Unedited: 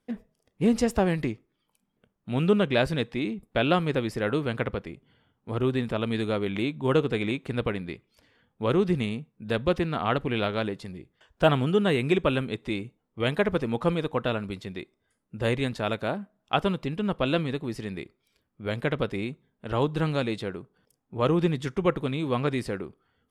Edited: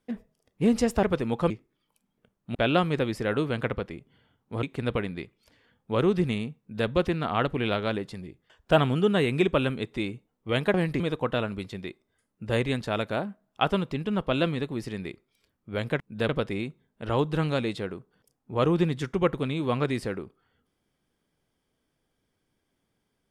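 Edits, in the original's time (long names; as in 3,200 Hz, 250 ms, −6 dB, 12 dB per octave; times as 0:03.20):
0:01.03–0:01.29: swap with 0:13.45–0:13.92
0:02.34–0:03.51: remove
0:05.59–0:07.34: remove
0:09.30–0:09.59: duplicate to 0:18.92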